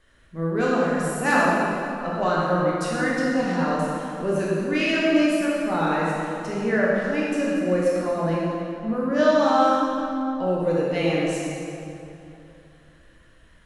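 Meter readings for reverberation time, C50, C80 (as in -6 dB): 2.8 s, -3.0 dB, -1.0 dB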